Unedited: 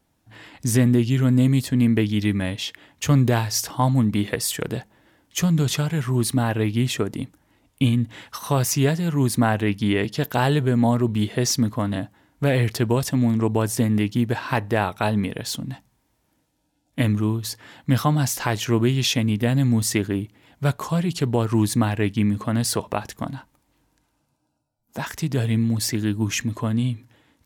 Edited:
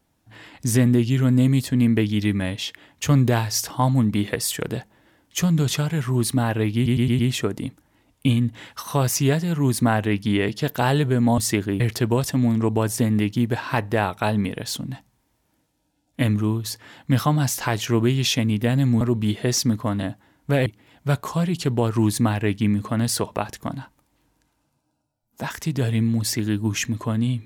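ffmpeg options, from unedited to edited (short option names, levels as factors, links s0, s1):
-filter_complex "[0:a]asplit=9[s0][s1][s2][s3][s4][s5][s6][s7][s8];[s0]atrim=end=6.862[s9];[s1]atrim=start=6.748:end=6.862[s10];[s2]atrim=start=6.748:end=6.862[s11];[s3]atrim=start=6.748:end=6.862[s12];[s4]atrim=start=6.748:end=10.942[s13];[s5]atrim=start=19.798:end=20.222[s14];[s6]atrim=start=12.588:end=19.802[s15];[s7]atrim=start=10.938:end=12.592[s16];[s8]atrim=start=20.218[s17];[s9][s10]acrossfade=d=0.004:c1=hsin:c2=hsin[s18];[s18][s11]acrossfade=d=0.004:c1=hsin:c2=hsin[s19];[s19][s12]acrossfade=d=0.004:c1=hsin:c2=hsin[s20];[s20][s13]acrossfade=d=0.004:c1=hsin:c2=hsin[s21];[s21][s14]acrossfade=d=0.004:c1=hsin:c2=hsin[s22];[s22][s15]acrossfade=d=0.004:c1=hsin:c2=hsin[s23];[s23][s16]acrossfade=d=0.004:c1=hsin:c2=hsin[s24];[s24][s17]acrossfade=d=0.004:c1=hsin:c2=hsin"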